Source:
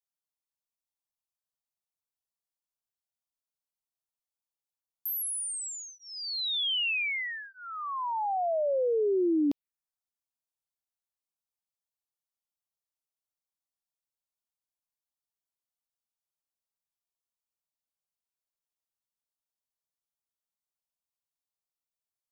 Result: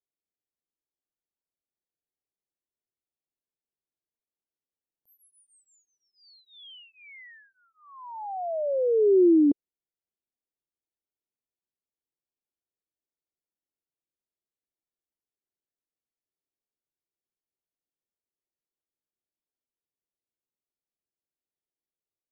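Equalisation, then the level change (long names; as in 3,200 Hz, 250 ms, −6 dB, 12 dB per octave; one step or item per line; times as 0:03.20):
moving average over 34 samples
parametric band 360 Hz +9.5 dB 1 octave
0.0 dB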